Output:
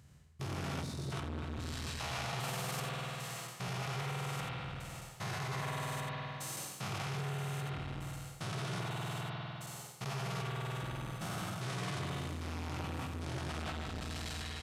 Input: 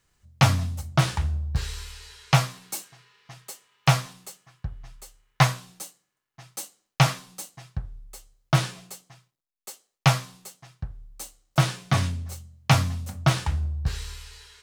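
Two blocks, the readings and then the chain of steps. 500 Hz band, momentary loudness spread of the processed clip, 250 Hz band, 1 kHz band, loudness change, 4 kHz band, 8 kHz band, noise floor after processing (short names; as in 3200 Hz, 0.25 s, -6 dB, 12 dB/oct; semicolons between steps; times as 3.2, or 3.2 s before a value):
-8.5 dB, 5 LU, -10.0 dB, -11.0 dB, -14.0 dB, -10.5 dB, -10.5 dB, -50 dBFS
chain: stepped spectrum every 0.4 s; downsampling 32000 Hz; vibrato 2.4 Hz 7.4 cents; HPF 97 Hz 12 dB/oct; on a send: echo 86 ms -7.5 dB; on the sum: spring tank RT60 2.6 s, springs 50 ms, chirp 50 ms, DRR -0.5 dB; reverse; compressor 6:1, threshold -39 dBFS, peak gain reduction 16 dB; reverse; spectral gain 0.83–1.12, 290–3500 Hz -12 dB; core saturation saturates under 510 Hz; gain +5 dB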